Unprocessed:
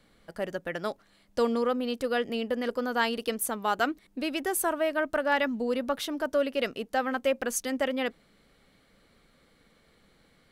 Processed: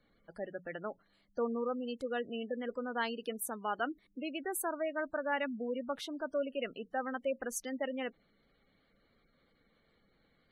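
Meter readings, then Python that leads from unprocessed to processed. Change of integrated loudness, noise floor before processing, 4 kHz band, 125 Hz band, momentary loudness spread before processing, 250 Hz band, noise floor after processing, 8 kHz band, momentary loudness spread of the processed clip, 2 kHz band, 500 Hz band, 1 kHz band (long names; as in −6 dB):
−8.5 dB, −64 dBFS, −10.5 dB, can't be measured, 8 LU, −8.0 dB, −72 dBFS, −8.5 dB, 8 LU, −8.5 dB, −8.0 dB, −8.5 dB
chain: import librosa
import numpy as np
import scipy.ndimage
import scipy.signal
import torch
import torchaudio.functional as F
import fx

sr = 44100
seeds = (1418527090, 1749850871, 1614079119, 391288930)

y = fx.hum_notches(x, sr, base_hz=60, count=3)
y = fx.spec_gate(y, sr, threshold_db=-20, keep='strong')
y = y * librosa.db_to_amplitude(-8.0)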